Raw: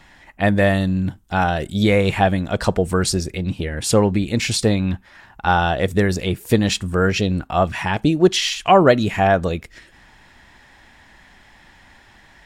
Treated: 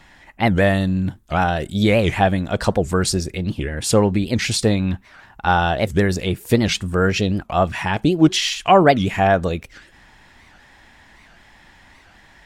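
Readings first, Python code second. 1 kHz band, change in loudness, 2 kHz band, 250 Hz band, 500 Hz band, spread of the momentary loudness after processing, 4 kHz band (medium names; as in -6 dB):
+0.5 dB, 0.0 dB, 0.0 dB, +0.5 dB, -0.5 dB, 8 LU, 0.0 dB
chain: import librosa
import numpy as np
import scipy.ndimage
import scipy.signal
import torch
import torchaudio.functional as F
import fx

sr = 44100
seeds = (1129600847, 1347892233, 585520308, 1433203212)

y = fx.record_warp(x, sr, rpm=78.0, depth_cents=250.0)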